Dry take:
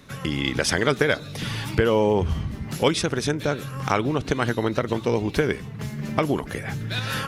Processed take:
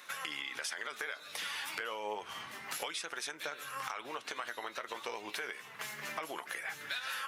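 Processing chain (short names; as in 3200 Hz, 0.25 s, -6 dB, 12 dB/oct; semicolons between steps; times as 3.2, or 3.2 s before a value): HPF 1100 Hz 12 dB/oct; bell 4800 Hz -4.5 dB 1.4 oct; limiter -20 dBFS, peak gain reduction 10 dB; compressor 6:1, threshold -41 dBFS, peak gain reduction 13.5 dB; flange 0.31 Hz, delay 5.5 ms, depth 5.6 ms, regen +65%; gain +8.5 dB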